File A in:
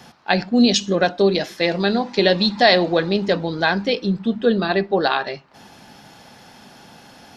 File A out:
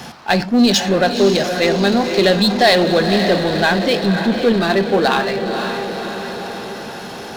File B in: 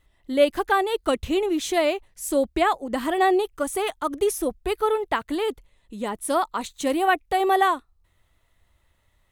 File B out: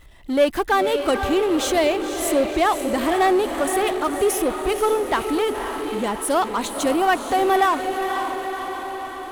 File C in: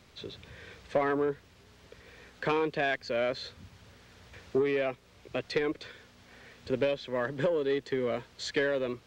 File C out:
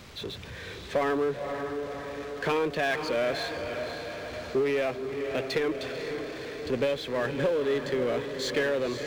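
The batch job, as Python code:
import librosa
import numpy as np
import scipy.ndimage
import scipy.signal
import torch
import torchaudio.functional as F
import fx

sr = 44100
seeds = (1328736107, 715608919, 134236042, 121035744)

y = fx.echo_diffused(x, sr, ms=526, feedback_pct=54, wet_db=-9.0)
y = fx.power_curve(y, sr, exponent=0.7)
y = F.gain(torch.from_numpy(y), -1.0).numpy()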